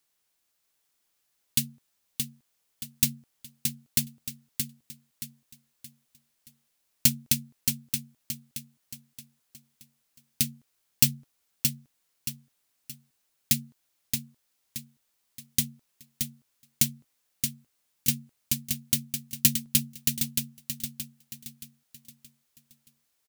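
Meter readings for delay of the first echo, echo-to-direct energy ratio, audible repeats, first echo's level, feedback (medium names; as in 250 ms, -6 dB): 624 ms, -5.0 dB, 4, -5.5 dB, 39%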